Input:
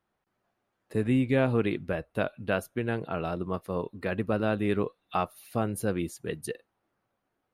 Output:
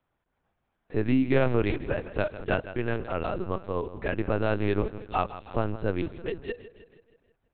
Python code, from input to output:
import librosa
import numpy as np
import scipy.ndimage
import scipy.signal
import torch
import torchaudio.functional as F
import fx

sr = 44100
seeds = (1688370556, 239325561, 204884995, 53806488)

p1 = x + fx.echo_feedback(x, sr, ms=159, feedback_pct=56, wet_db=-14.5, dry=0)
p2 = fx.lpc_vocoder(p1, sr, seeds[0], excitation='pitch_kept', order=8)
y = p2 * librosa.db_to_amplitude(1.5)